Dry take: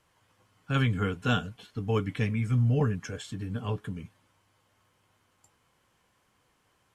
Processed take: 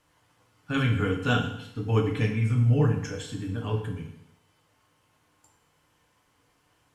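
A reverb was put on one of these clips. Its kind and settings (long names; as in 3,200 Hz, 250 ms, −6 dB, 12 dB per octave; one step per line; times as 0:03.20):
feedback delay network reverb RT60 0.78 s, low-frequency decay 1×, high-frequency decay 0.95×, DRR 1 dB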